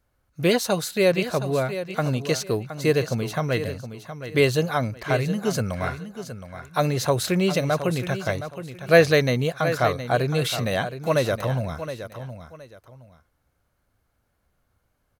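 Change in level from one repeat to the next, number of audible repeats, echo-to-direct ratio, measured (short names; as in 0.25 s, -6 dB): -11.5 dB, 2, -10.5 dB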